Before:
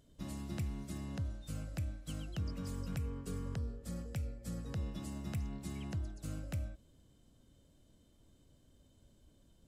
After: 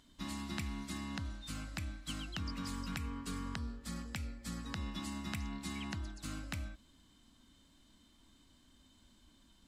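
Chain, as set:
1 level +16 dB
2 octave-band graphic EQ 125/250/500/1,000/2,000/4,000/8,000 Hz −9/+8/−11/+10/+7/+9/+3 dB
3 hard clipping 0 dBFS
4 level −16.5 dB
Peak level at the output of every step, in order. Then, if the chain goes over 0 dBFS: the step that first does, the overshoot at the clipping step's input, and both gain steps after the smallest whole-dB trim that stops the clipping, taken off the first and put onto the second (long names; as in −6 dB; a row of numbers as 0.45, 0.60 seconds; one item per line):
−12.0, −6.0, −6.0, −22.5 dBFS
no step passes full scale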